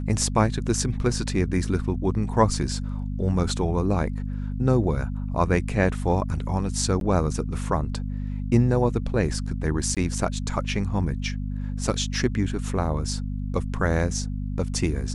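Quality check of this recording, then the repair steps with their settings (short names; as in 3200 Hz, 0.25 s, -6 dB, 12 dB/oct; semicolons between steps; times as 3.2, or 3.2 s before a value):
hum 50 Hz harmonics 5 -29 dBFS
7–7.01 gap 12 ms
9.95–9.97 gap 17 ms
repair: de-hum 50 Hz, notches 5; interpolate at 7, 12 ms; interpolate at 9.95, 17 ms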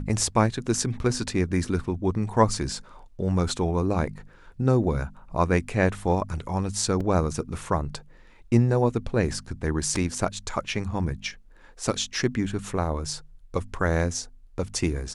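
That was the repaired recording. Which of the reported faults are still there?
none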